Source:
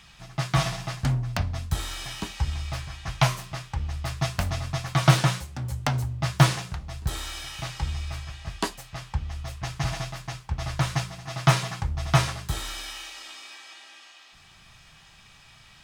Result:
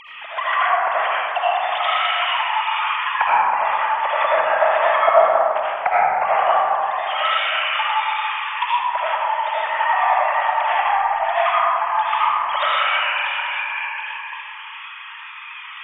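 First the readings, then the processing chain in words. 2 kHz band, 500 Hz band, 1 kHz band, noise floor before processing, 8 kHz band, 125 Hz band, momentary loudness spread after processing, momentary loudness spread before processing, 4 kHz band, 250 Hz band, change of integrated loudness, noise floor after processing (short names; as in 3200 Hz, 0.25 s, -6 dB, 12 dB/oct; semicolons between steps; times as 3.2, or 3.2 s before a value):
+13.5 dB, +15.0 dB, +17.0 dB, -53 dBFS, under -40 dB, under -35 dB, 11 LU, 14 LU, +7.5 dB, under -20 dB, +9.5 dB, -36 dBFS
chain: sine-wave speech; treble ducked by the level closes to 560 Hz, closed at -21 dBFS; digital reverb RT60 2.7 s, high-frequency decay 0.3×, pre-delay 40 ms, DRR -9 dB; gain +4 dB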